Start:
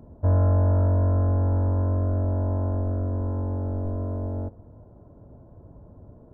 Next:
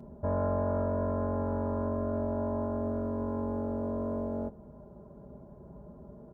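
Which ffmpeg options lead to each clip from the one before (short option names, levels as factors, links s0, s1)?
-filter_complex "[0:a]highpass=58,aecho=1:1:5:0.85,asplit=2[s0][s1];[s1]alimiter=level_in=1.19:limit=0.0631:level=0:latency=1,volume=0.841,volume=1[s2];[s0][s2]amix=inputs=2:normalize=0,volume=0.447"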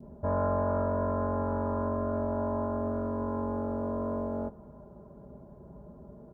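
-af "adynamicequalizer=threshold=0.00282:dfrequency=1200:dqfactor=1.2:tfrequency=1200:tqfactor=1.2:attack=5:release=100:ratio=0.375:range=3:mode=boostabove:tftype=bell"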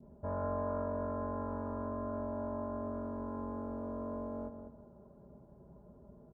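-filter_complex "[0:a]asplit=2[s0][s1];[s1]adelay=199,lowpass=f=1300:p=1,volume=0.447,asplit=2[s2][s3];[s3]adelay=199,lowpass=f=1300:p=1,volume=0.28,asplit=2[s4][s5];[s5]adelay=199,lowpass=f=1300:p=1,volume=0.28[s6];[s0][s2][s4][s6]amix=inputs=4:normalize=0,volume=0.376"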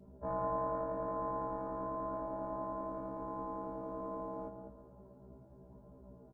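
-af "aecho=1:1:450:0.0944,tremolo=f=36:d=0.519,afftfilt=real='re*1.73*eq(mod(b,3),0)':imag='im*1.73*eq(mod(b,3),0)':win_size=2048:overlap=0.75,volume=1.78"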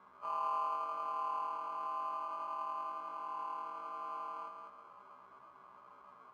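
-af "aeval=exprs='val(0)+0.5*0.00473*sgn(val(0))':c=same,acrusher=samples=24:mix=1:aa=0.000001,bandpass=f=1100:t=q:w=9.7:csg=0,volume=2.99"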